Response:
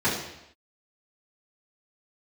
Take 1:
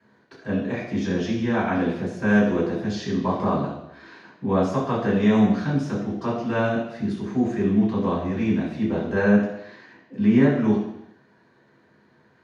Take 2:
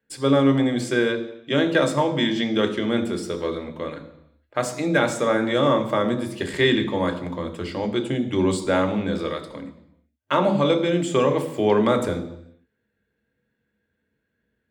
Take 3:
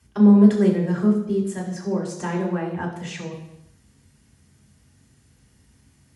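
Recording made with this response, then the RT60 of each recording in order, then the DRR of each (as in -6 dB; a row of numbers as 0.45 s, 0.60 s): 1; no single decay rate, no single decay rate, no single decay rate; -11.5 dB, 5.5 dB, -2.0 dB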